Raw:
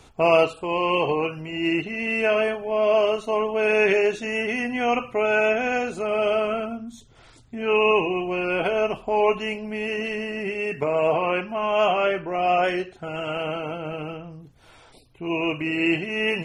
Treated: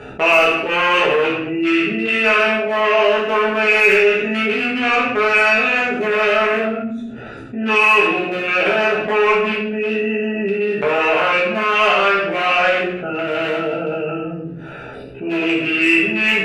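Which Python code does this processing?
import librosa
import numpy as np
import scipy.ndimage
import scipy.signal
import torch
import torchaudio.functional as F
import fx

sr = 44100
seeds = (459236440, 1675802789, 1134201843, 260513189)

p1 = fx.wiener(x, sr, points=41)
p2 = fx.highpass(p1, sr, hz=380.0, slope=6)
p3 = fx.band_shelf(p2, sr, hz=1900.0, db=10.0, octaves=1.7)
p4 = fx.cheby_harmonics(p3, sr, harmonics=(5,), levels_db=(-28,), full_scale_db=-5.5)
p5 = p4 + fx.room_early_taps(p4, sr, ms=(15, 64), db=(-3.5, -10.5), dry=0)
p6 = fx.room_shoebox(p5, sr, seeds[0], volume_m3=77.0, walls='mixed', distance_m=1.4)
p7 = fx.env_flatten(p6, sr, amount_pct=50)
y = p7 * librosa.db_to_amplitude(-6.5)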